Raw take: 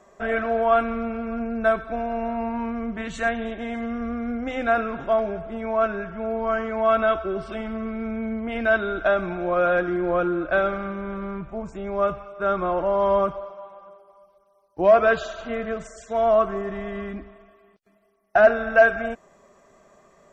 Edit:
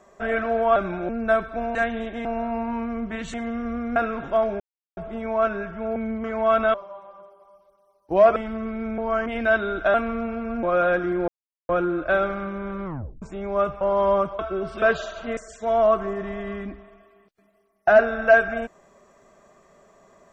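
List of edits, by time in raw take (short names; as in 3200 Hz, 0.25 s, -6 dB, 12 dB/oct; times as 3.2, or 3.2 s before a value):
0.76–1.45 swap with 9.14–9.47
3.2–3.7 move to 2.11
4.32–4.72 cut
5.36 insert silence 0.37 s
6.35–6.63 swap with 8.18–8.46
7.13–7.56 swap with 13.42–15.04
10.12 insert silence 0.41 s
11.28 tape stop 0.37 s
12.24–12.84 cut
15.59–15.85 cut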